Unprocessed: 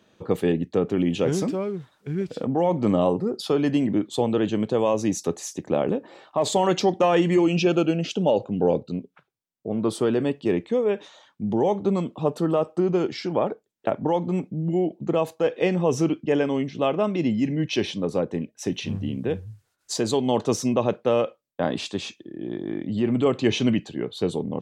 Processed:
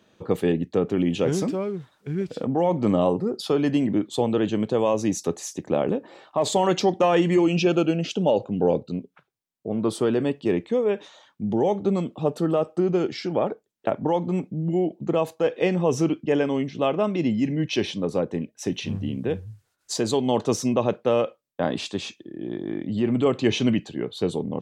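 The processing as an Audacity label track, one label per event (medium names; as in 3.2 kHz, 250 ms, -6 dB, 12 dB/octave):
11.430000	13.430000	peaking EQ 1 kHz -7.5 dB 0.2 oct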